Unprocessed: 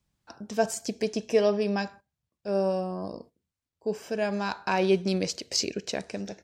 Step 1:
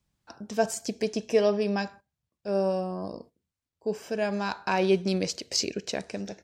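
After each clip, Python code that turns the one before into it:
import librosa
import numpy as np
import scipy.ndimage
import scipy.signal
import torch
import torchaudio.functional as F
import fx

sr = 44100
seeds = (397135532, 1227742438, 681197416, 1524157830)

y = x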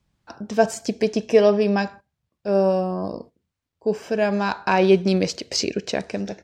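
y = fx.high_shelf(x, sr, hz=6200.0, db=-11.0)
y = F.gain(torch.from_numpy(y), 7.5).numpy()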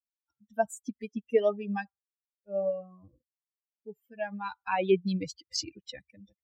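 y = fx.bin_expand(x, sr, power=3.0)
y = F.gain(torch.from_numpy(y), -5.5).numpy()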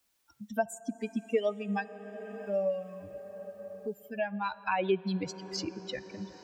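y = fx.rev_plate(x, sr, seeds[0], rt60_s=4.7, hf_ratio=0.7, predelay_ms=0, drr_db=18.0)
y = fx.band_squash(y, sr, depth_pct=70)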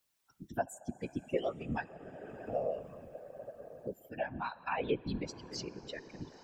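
y = fx.whisperise(x, sr, seeds[1])
y = F.gain(torch.from_numpy(y), -5.0).numpy()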